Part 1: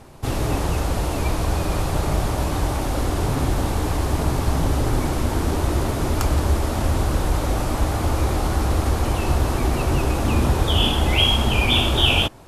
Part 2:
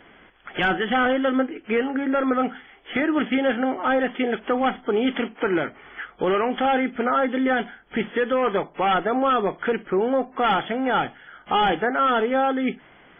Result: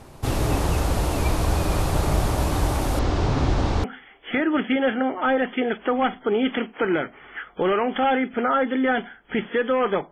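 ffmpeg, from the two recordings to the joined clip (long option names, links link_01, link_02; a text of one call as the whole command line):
ffmpeg -i cue0.wav -i cue1.wav -filter_complex "[0:a]asettb=1/sr,asplit=3[link_01][link_02][link_03];[link_01]atrim=end=2.994[link_04];[link_02]atrim=start=2.99:end=3.84,asetpts=PTS-STARTPTS,afade=type=in:duration=0.004:curve=qsin,afade=type=out:start_time=0.846:duration=0.004:curve=qsin,lowpass=frequency=5900:width=0.5412,lowpass=frequency=5900:width=1.3066[link_05];[link_03]atrim=start=3.836[link_06];[link_04][link_05]acrossfade=duration=0.004:curve1=hsin:curve2=qsin[link_07];[link_07][link_06]acrossfade=duration=0.004:curve1=qsin:curve2=hsin,apad=whole_dur=10.11,atrim=end=10.11,atrim=end=3.842[link_08];[1:a]atrim=start=2.458:end=8.73[link_09];[link_08][link_09]acrossfade=duration=0.004:curve1=hsin:curve2=hsin" out.wav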